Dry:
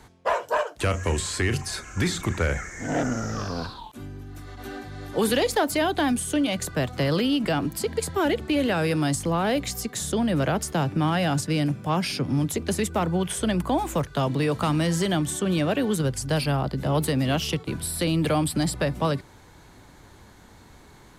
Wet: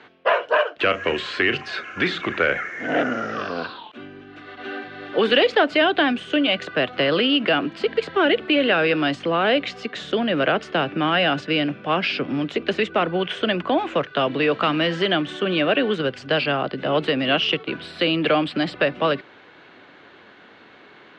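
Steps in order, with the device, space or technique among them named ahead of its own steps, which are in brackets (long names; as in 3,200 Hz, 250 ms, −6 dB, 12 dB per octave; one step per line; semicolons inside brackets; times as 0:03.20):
phone earpiece (loudspeaker in its box 340–3,500 Hz, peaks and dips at 900 Hz −8 dB, 1,500 Hz +3 dB, 2,800 Hz +6 dB)
level +7 dB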